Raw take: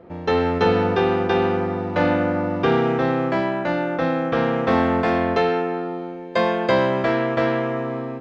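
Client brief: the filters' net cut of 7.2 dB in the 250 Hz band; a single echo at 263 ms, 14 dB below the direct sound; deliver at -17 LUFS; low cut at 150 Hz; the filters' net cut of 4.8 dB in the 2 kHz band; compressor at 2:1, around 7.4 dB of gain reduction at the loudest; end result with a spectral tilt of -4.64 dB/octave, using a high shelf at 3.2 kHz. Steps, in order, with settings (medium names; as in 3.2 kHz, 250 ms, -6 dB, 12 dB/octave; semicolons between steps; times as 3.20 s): high-pass 150 Hz; peaking EQ 250 Hz -9 dB; peaking EQ 2 kHz -4.5 dB; treble shelf 3.2 kHz -5.5 dB; compression 2:1, threshold -31 dBFS; delay 263 ms -14 dB; trim +13.5 dB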